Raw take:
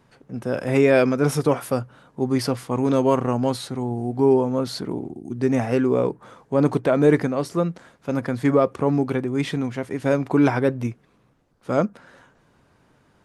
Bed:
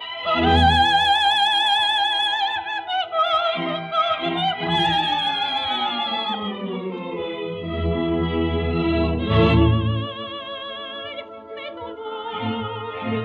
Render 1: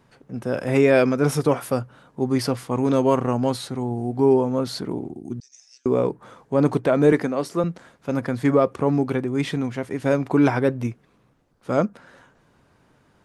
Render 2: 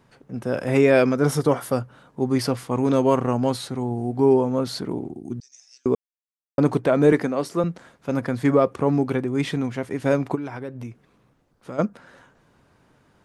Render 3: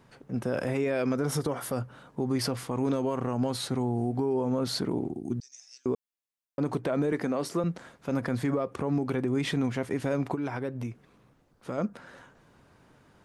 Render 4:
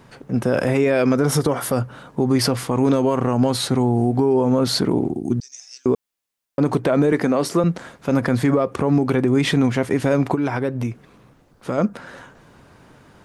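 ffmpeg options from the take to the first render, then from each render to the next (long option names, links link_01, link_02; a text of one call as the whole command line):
ffmpeg -i in.wav -filter_complex "[0:a]asettb=1/sr,asplit=3[link_01][link_02][link_03];[link_01]atrim=end=5.404[link_04];[link_02]atrim=start=5.4:end=5.86,asetpts=PTS-STARTPTS,afade=type=in:duration=0.004:curve=qsin,afade=type=out:start_time=0.456:duration=0.004:curve=qsin,asuperpass=centerf=5800:order=4:qfactor=2.9[link_05];[link_03]atrim=start=5.856[link_06];[link_04][link_05]acrossfade=duration=0.004:curve1=hsin:curve2=qsin[link_07];[link_07][link_06]acrossfade=duration=0.004:curve1=qsin:curve2=hsin,asettb=1/sr,asplit=3[link_08][link_09][link_10];[link_08]atrim=end=7.124[link_11];[link_09]atrim=start=7.12:end=7.64,asetpts=PTS-STARTPTS,afade=type=in:duration=0.004:curve=qsin,afade=type=out:start_time=0.516:duration=0.004:curve=qsin,highpass=180[link_12];[link_10]atrim=start=7.636[link_13];[link_11][link_12]acrossfade=duration=0.004:curve1=hsin:curve2=qsin[link_14];[link_14][link_13]acrossfade=duration=0.004:curve1=qsin:curve2=hsin" out.wav
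ffmpeg -i in.wav -filter_complex "[0:a]asettb=1/sr,asplit=3[link_01][link_02][link_03];[link_01]atrim=end=1.154[link_04];[link_02]atrim=start=1.15:end=1.74,asetpts=PTS-STARTPTS,afade=type=in:duration=0.004:curve=qsin,afade=type=out:start_time=0.586:duration=0.004:curve=qsin,bandreject=frequency=2500:width=6.5[link_05];[link_03]atrim=start=1.736[link_06];[link_04][link_05]acrossfade=duration=0.004:curve1=hsin:curve2=qsin[link_07];[link_07][link_06]acrossfade=duration=0.004:curve1=qsin:curve2=hsin,asplit=3[link_08][link_09][link_10];[link_08]afade=type=out:start_time=10.34:duration=0.02[link_11];[link_09]acompressor=threshold=-33dB:ratio=3:attack=3.2:release=140:knee=1:detection=peak,afade=type=in:start_time=10.34:duration=0.02,afade=type=out:start_time=11.78:duration=0.02[link_12];[link_10]afade=type=in:start_time=11.78:duration=0.02[link_13];[link_11][link_12][link_13]amix=inputs=3:normalize=0,asplit=3[link_14][link_15][link_16];[link_14]atrim=end=5.95,asetpts=PTS-STARTPTS,afade=type=out:start_time=5.946:duration=0.004:curve=hsin[link_17];[link_15]atrim=start=5.95:end=6.58,asetpts=PTS-STARTPTS,volume=0[link_18];[link_16]atrim=start=6.58,asetpts=PTS-STARTPTS,afade=type=in:duration=0.004:curve=hsin[link_19];[link_17][link_18][link_19]concat=n=3:v=0:a=1" out.wav
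ffmpeg -i in.wav -af "acompressor=threshold=-20dB:ratio=6,alimiter=limit=-19dB:level=0:latency=1:release=50" out.wav
ffmpeg -i in.wav -af "volume=10.5dB" out.wav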